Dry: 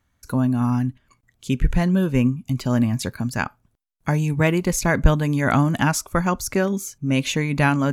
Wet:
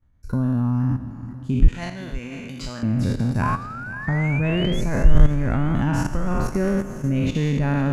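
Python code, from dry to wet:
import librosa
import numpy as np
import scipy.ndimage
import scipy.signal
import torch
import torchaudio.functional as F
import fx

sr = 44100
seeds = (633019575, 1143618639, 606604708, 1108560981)

p1 = fx.spec_trails(x, sr, decay_s=1.69)
p2 = 10.0 ** (-13.5 / 20.0) * np.tanh(p1 / 10.0 ** (-13.5 / 20.0))
p3 = p1 + (p2 * librosa.db_to_amplitude(-9.5))
p4 = fx.spec_paint(p3, sr, seeds[0], shape='rise', start_s=3.42, length_s=1.39, low_hz=990.0, high_hz=3500.0, level_db=-16.0)
p5 = fx.tilt_eq(p4, sr, slope=-3.5)
p6 = fx.level_steps(p5, sr, step_db=13)
p7 = fx.weighting(p6, sr, curve='ITU-R 468', at=(1.68, 2.83))
p8 = p7 + fx.echo_feedback(p7, sr, ms=505, feedback_pct=52, wet_db=-17.0, dry=0)
y = p8 * librosa.db_to_amplitude(-7.5)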